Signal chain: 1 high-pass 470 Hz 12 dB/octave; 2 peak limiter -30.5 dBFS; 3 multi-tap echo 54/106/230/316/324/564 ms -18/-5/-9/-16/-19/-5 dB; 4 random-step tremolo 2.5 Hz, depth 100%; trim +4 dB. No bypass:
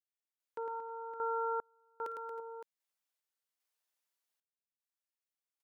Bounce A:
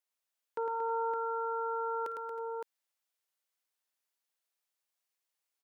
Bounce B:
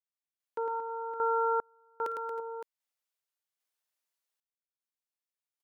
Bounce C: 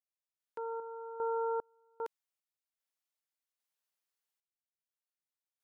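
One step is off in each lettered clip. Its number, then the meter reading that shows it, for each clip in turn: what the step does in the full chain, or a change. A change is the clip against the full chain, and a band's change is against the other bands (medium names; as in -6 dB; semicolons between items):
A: 4, momentary loudness spread change -5 LU; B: 2, mean gain reduction 6.5 dB; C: 3, momentary loudness spread change -4 LU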